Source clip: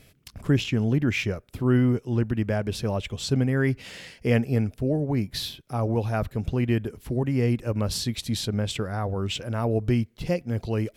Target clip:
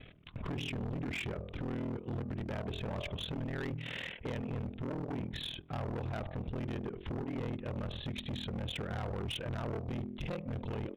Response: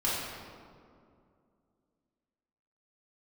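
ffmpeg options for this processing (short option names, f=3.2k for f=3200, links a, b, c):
-filter_complex "[0:a]bandreject=f=45.65:t=h:w=4,bandreject=f=91.3:t=h:w=4,bandreject=f=136.95:t=h:w=4,bandreject=f=182.6:t=h:w=4,bandreject=f=228.25:t=h:w=4,bandreject=f=273.9:t=h:w=4,bandreject=f=319.55:t=h:w=4,bandreject=f=365.2:t=h:w=4,bandreject=f=410.85:t=h:w=4,bandreject=f=456.5:t=h:w=4,bandreject=f=502.15:t=h:w=4,bandreject=f=547.8:t=h:w=4,bandreject=f=593.45:t=h:w=4,bandreject=f=639.1:t=h:w=4,bandreject=f=684.75:t=h:w=4,bandreject=f=730.4:t=h:w=4,bandreject=f=776.05:t=h:w=4,bandreject=f=821.7:t=h:w=4,bandreject=f=867.35:t=h:w=4,bandreject=f=913:t=h:w=4,bandreject=f=958.65:t=h:w=4,bandreject=f=1.0043k:t=h:w=4,bandreject=f=1.04995k:t=h:w=4,bandreject=f=1.0956k:t=h:w=4,bandreject=f=1.14125k:t=h:w=4,bandreject=f=1.1869k:t=h:w=4,bandreject=f=1.23255k:t=h:w=4,asplit=2[a][b];[b]alimiter=limit=-17.5dB:level=0:latency=1:release=31,volume=-2.5dB[c];[a][c]amix=inputs=2:normalize=0,acompressor=threshold=-28dB:ratio=5,aresample=8000,asoftclip=type=tanh:threshold=-28dB,aresample=44100,aeval=exprs='val(0)*sin(2*PI*20*n/s)':c=same,volume=35dB,asoftclip=hard,volume=-35dB,volume=1dB"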